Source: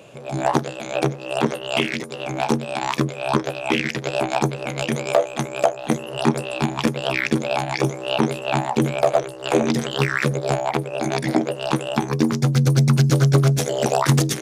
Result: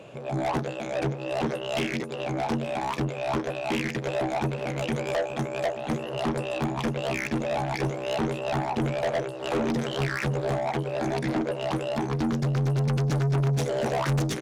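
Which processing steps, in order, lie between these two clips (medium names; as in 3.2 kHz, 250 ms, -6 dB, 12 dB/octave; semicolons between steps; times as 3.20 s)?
low-pass 2.9 kHz 6 dB/octave; saturation -22.5 dBFS, distortion -6 dB; delay 877 ms -17.5 dB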